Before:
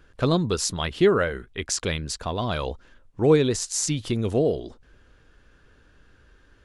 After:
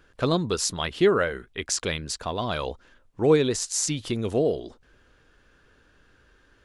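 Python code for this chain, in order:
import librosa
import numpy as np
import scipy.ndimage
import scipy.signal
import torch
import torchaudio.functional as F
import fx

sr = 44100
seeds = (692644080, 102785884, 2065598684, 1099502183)

y = fx.low_shelf(x, sr, hz=180.0, db=-6.5)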